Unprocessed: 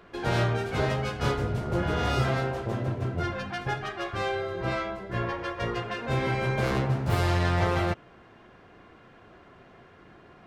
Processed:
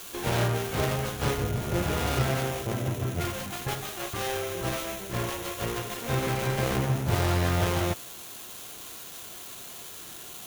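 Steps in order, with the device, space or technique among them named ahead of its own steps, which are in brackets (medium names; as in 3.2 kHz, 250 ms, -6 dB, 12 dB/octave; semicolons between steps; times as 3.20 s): budget class-D amplifier (dead-time distortion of 0.29 ms; zero-crossing glitches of -24 dBFS)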